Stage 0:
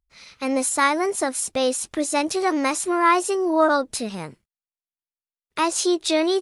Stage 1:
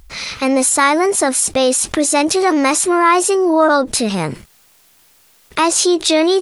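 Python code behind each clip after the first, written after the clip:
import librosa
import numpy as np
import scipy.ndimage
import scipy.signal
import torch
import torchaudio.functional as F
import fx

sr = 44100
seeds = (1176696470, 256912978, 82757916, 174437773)

y = fx.env_flatten(x, sr, amount_pct=50)
y = y * librosa.db_to_amplitude(4.5)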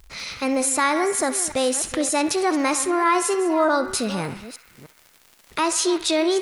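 y = fx.reverse_delay(x, sr, ms=304, wet_db=-13.5)
y = fx.dmg_crackle(y, sr, seeds[0], per_s=100.0, level_db=-28.0)
y = fx.echo_banded(y, sr, ms=66, feedback_pct=82, hz=1800.0, wet_db=-12)
y = y * librosa.db_to_amplitude(-7.5)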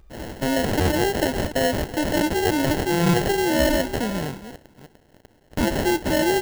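y = fx.sample_hold(x, sr, seeds[1], rate_hz=1200.0, jitter_pct=0)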